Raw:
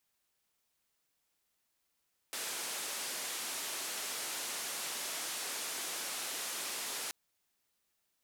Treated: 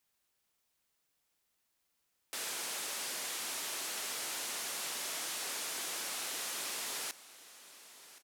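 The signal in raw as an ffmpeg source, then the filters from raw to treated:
-f lavfi -i "anoisesrc=c=white:d=4.78:r=44100:seed=1,highpass=f=290,lowpass=f=11000,volume=-31.6dB"
-af "aecho=1:1:1073|2146|3219:0.141|0.0523|0.0193"

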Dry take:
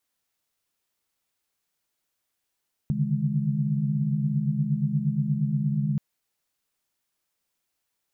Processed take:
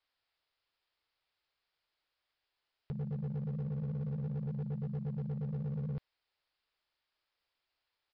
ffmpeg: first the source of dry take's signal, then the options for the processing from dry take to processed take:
-f lavfi -i "aevalsrc='0.0398*(sin(2*PI*138.59*t)+sin(2*PI*146.83*t)+sin(2*PI*155.56*t)+sin(2*PI*207.65*t))':d=3.08:s=44100"
-af "equalizer=f=200:t=o:w=1.4:g=-12.5,aresample=11025,asoftclip=type=hard:threshold=0.02,aresample=44100"

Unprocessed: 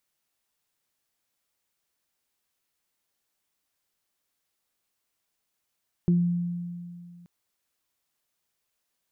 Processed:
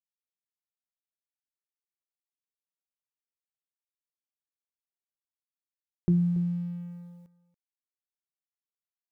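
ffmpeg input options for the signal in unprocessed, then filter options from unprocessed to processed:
-f lavfi -i "aevalsrc='0.141*pow(10,-3*t/2.32)*sin(2*PI*174*t)+0.0473*pow(10,-3*t/0.28)*sin(2*PI*348*t)':d=1.18:s=44100"
-af "bandreject=f=50:t=h:w=6,bandreject=f=100:t=h:w=6,bandreject=f=150:t=h:w=6,aeval=exprs='sgn(val(0))*max(abs(val(0))-0.00158,0)':c=same,aecho=1:1:282:0.15"

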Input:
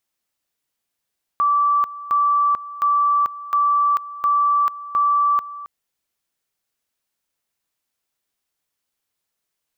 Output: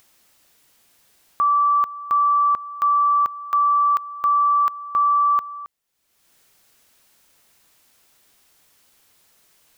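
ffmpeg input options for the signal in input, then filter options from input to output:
-f lavfi -i "aevalsrc='pow(10,(-14-16.5*gte(mod(t,0.71),0.44))/20)*sin(2*PI*1160*t)':d=4.26:s=44100"
-af "acompressor=mode=upward:threshold=0.00891:ratio=2.5"

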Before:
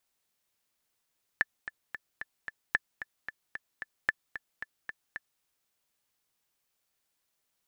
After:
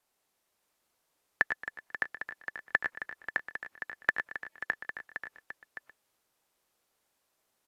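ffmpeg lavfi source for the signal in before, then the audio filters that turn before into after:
-f lavfi -i "aevalsrc='pow(10,(-11-13*gte(mod(t,5*60/224),60/224))/20)*sin(2*PI*1750*mod(t,60/224))*exp(-6.91*mod(t,60/224)/0.03)':d=4.01:s=44100"
-filter_complex "[0:a]acrossover=split=280|1300[s0][s1][s2];[s1]acontrast=85[s3];[s0][s3][s2]amix=inputs=3:normalize=0,aecho=1:1:95|109|224|611|735:0.266|0.376|0.112|0.562|0.119" -ar 32000 -c:a aac -b:a 64k

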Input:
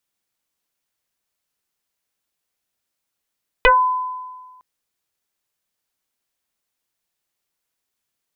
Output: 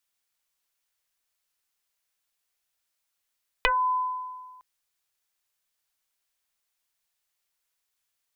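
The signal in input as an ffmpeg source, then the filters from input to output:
-f lavfi -i "aevalsrc='0.447*pow(10,-3*t/1.49)*sin(2*PI*1010*t+4.5*pow(10,-3*t/0.19)*sin(2*PI*0.49*1010*t))':d=0.96:s=44100"
-af "equalizer=f=210:w=0.44:g=-11.5,acompressor=threshold=0.0891:ratio=12"

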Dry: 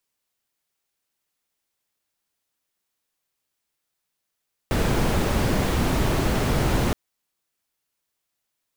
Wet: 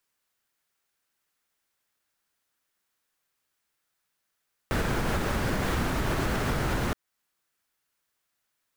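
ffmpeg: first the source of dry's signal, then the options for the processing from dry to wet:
-f lavfi -i "anoisesrc=c=brown:a=0.417:d=2.22:r=44100:seed=1"
-af "equalizer=f=1500:w=1.5:g=6,alimiter=limit=0.126:level=0:latency=1:release=287"

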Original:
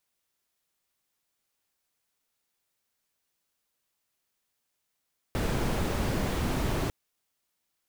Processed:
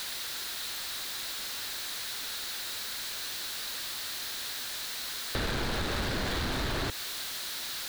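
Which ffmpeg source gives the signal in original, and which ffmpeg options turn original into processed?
-f lavfi -i "anoisesrc=c=brown:a=0.186:d=1.55:r=44100:seed=1"
-af "aeval=exprs='val(0)+0.5*0.02*sgn(val(0))':c=same,equalizer=f=160:t=o:w=0.67:g=-4,equalizer=f=1600:t=o:w=0.67:g=7,equalizer=f=4000:t=o:w=0.67:g=12,acompressor=threshold=0.0398:ratio=6"

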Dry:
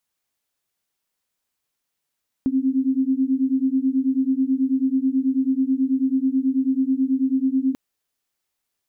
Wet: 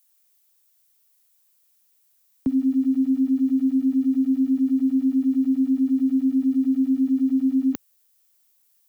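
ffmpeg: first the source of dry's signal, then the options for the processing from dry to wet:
-f lavfi -i "aevalsrc='0.0944*(sin(2*PI*260*t)+sin(2*PI*269.2*t))':d=5.29:s=44100"
-filter_complex "[0:a]aemphasis=mode=production:type=75kf,acrossover=split=100|220[s0][s1][s2];[s1]aeval=exprs='val(0)*gte(abs(val(0)),0.00398)':c=same[s3];[s0][s3][s2]amix=inputs=3:normalize=0"

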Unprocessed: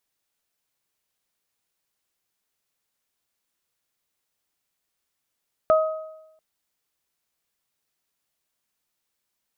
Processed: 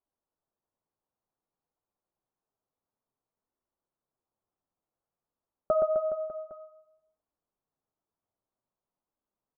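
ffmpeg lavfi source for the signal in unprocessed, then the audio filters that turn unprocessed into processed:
-f lavfi -i "aevalsrc='0.224*pow(10,-3*t/0.92)*sin(2*PI*631*t)+0.112*pow(10,-3*t/0.75)*sin(2*PI*1262*t)':d=0.69:s=44100"
-af "lowpass=f=1100:w=0.5412,lowpass=f=1100:w=1.3066,flanger=delay=2.6:depth=9.4:regen=-23:speed=0.55:shape=triangular,aecho=1:1:120|258|416.7|599.2|809.1:0.631|0.398|0.251|0.158|0.1"

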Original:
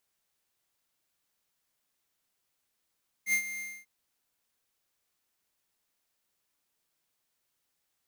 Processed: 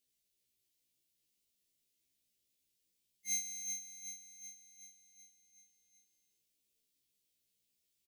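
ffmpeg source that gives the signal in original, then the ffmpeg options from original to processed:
-f lavfi -i "aevalsrc='0.0562*(2*lt(mod(2110*t,1),0.5)-1)':d=0.593:s=44100,afade=t=in:d=0.073,afade=t=out:st=0.073:d=0.084:silence=0.224,afade=t=out:st=0.34:d=0.253"
-filter_complex "[0:a]asuperstop=centerf=1100:order=4:qfactor=0.51,asplit=2[s0][s1];[s1]aecho=0:1:376|752|1128|1504|1880|2256|2632:0.422|0.24|0.137|0.0781|0.0445|0.0254|0.0145[s2];[s0][s2]amix=inputs=2:normalize=0,afftfilt=real='re*1.73*eq(mod(b,3),0)':imag='im*1.73*eq(mod(b,3),0)':win_size=2048:overlap=0.75"

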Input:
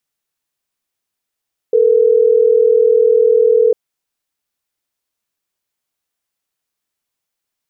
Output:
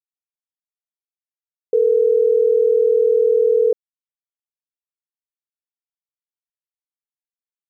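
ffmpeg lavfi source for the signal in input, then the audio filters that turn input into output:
-f lavfi -i "aevalsrc='0.299*(sin(2*PI*440*t)+sin(2*PI*480*t))*clip(min(mod(t,6),2-mod(t,6))/0.005,0,1)':d=3.12:s=44100"
-af "alimiter=limit=0.355:level=0:latency=1:release=78,acrusher=bits=9:mix=0:aa=0.000001"

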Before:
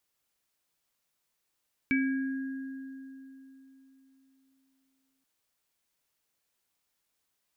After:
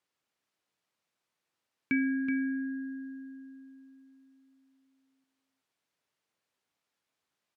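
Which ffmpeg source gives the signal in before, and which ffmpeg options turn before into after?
-f lavfi -i "aevalsrc='0.0631*pow(10,-3*t/3.68)*sin(2*PI*267*t)+0.0224*pow(10,-3*t/2.49)*sin(2*PI*1640*t)+0.0531*pow(10,-3*t/0.48)*sin(2*PI*2290*t)':d=3.33:s=44100"
-filter_complex "[0:a]highpass=110,aemphasis=mode=reproduction:type=50fm,asplit=2[s0][s1];[s1]aecho=0:1:375:0.376[s2];[s0][s2]amix=inputs=2:normalize=0"

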